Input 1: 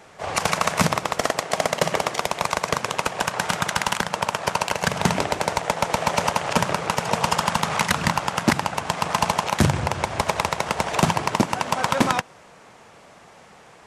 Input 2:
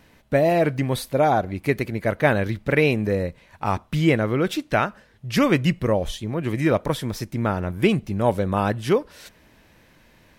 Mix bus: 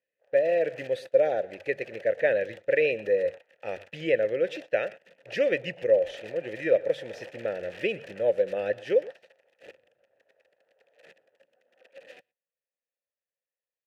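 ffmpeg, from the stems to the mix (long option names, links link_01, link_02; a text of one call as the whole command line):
ffmpeg -i stem1.wav -i stem2.wav -filter_complex "[0:a]afwtdn=0.0562,tiltshelf=frequency=1200:gain=-5,aeval=exprs='(mod(11.2*val(0)+1,2)-1)/11.2':channel_layout=same,volume=-1dB,asplit=2[link_01][link_02];[link_02]volume=-18dB[link_03];[1:a]equalizer=frequency=250:width_type=o:width=0.67:gain=-6,equalizer=frequency=1000:width_type=o:width=0.67:gain=-6,equalizer=frequency=6300:width_type=o:width=0.67:gain=4,dynaudnorm=framelen=130:gausssize=11:maxgain=4dB,volume=2.5dB,asplit=3[link_04][link_05][link_06];[link_05]volume=-19.5dB[link_07];[link_06]apad=whole_len=611574[link_08];[link_01][link_08]sidechaincompress=threshold=-18dB:ratio=8:attack=6.8:release=212[link_09];[link_03][link_07]amix=inputs=2:normalize=0,aecho=0:1:119:1[link_10];[link_09][link_04][link_10]amix=inputs=3:normalize=0,bandreject=frequency=48.03:width_type=h:width=4,bandreject=frequency=96.06:width_type=h:width=4,bandreject=frequency=144.09:width_type=h:width=4,agate=range=-23dB:threshold=-26dB:ratio=16:detection=peak,asplit=3[link_11][link_12][link_13];[link_11]bandpass=frequency=530:width_type=q:width=8,volume=0dB[link_14];[link_12]bandpass=frequency=1840:width_type=q:width=8,volume=-6dB[link_15];[link_13]bandpass=frequency=2480:width_type=q:width=8,volume=-9dB[link_16];[link_14][link_15][link_16]amix=inputs=3:normalize=0" out.wav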